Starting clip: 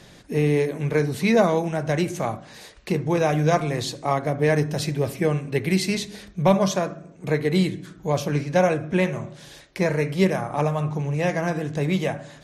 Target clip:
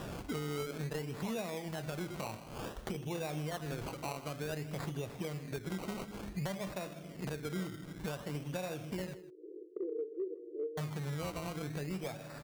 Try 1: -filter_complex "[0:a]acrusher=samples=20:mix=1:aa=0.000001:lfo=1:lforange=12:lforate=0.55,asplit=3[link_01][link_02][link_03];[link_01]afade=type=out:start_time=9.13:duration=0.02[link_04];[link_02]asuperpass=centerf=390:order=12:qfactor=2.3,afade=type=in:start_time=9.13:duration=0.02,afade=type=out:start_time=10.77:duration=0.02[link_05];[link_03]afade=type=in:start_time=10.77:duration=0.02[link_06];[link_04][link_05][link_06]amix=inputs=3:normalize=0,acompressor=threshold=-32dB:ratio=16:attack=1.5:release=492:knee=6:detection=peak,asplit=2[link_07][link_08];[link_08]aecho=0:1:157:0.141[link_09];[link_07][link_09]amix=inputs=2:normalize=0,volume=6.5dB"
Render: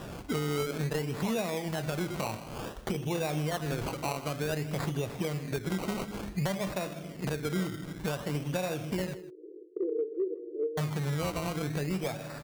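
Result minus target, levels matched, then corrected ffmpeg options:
downward compressor: peak gain reduction −7 dB
-filter_complex "[0:a]acrusher=samples=20:mix=1:aa=0.000001:lfo=1:lforange=12:lforate=0.55,asplit=3[link_01][link_02][link_03];[link_01]afade=type=out:start_time=9.13:duration=0.02[link_04];[link_02]asuperpass=centerf=390:order=12:qfactor=2.3,afade=type=in:start_time=9.13:duration=0.02,afade=type=out:start_time=10.77:duration=0.02[link_05];[link_03]afade=type=in:start_time=10.77:duration=0.02[link_06];[link_04][link_05][link_06]amix=inputs=3:normalize=0,acompressor=threshold=-39.5dB:ratio=16:attack=1.5:release=492:knee=6:detection=peak,asplit=2[link_07][link_08];[link_08]aecho=0:1:157:0.141[link_09];[link_07][link_09]amix=inputs=2:normalize=0,volume=6.5dB"

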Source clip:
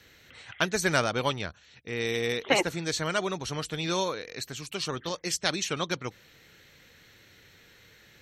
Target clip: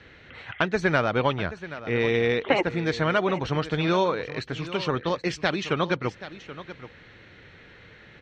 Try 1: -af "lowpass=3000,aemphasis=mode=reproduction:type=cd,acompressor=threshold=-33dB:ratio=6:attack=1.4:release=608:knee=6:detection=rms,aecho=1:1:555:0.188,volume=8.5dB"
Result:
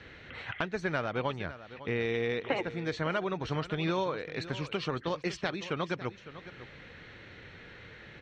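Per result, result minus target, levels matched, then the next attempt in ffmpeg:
downward compressor: peak gain reduction +9.5 dB; echo 224 ms early
-af "lowpass=3000,aemphasis=mode=reproduction:type=cd,acompressor=threshold=-21.5dB:ratio=6:attack=1.4:release=608:knee=6:detection=rms,aecho=1:1:555:0.188,volume=8.5dB"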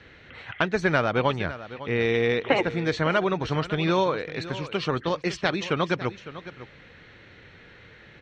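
echo 224 ms early
-af "lowpass=3000,aemphasis=mode=reproduction:type=cd,acompressor=threshold=-21.5dB:ratio=6:attack=1.4:release=608:knee=6:detection=rms,aecho=1:1:779:0.188,volume=8.5dB"

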